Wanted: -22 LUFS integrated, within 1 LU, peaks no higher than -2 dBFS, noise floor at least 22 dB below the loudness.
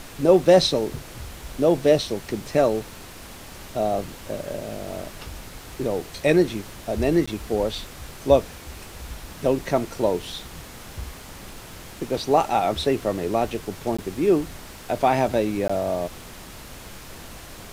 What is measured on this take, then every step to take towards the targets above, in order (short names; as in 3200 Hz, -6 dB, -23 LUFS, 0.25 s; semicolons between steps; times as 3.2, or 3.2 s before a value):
dropouts 3; longest dropout 15 ms; noise floor -41 dBFS; noise floor target -45 dBFS; loudness -23.0 LUFS; peak -3.5 dBFS; loudness target -22.0 LUFS
-> interpolate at 7.26/13.97/15.68, 15 ms; noise print and reduce 6 dB; gain +1 dB